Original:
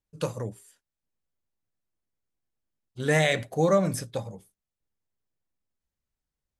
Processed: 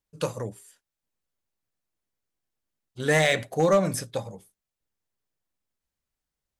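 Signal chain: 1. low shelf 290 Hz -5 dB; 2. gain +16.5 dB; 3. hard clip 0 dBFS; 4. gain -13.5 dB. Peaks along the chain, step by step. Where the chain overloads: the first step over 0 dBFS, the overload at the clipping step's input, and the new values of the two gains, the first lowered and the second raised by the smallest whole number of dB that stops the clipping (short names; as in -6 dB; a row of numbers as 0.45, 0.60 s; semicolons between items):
-12.0, +4.5, 0.0, -13.5 dBFS; step 2, 4.5 dB; step 2 +11.5 dB, step 4 -8.5 dB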